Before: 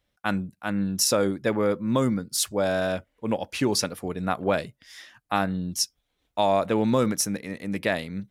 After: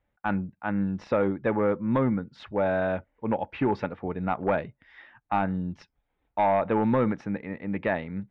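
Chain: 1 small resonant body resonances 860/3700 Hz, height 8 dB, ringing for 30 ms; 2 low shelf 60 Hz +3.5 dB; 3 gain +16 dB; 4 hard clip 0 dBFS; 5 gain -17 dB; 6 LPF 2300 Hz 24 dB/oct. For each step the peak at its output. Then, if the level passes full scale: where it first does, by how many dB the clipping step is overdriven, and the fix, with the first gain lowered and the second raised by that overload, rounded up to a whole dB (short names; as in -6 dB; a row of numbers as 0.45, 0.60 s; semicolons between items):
-8.0, -8.0, +8.0, 0.0, -17.0, -15.5 dBFS; step 3, 8.0 dB; step 3 +8 dB, step 5 -9 dB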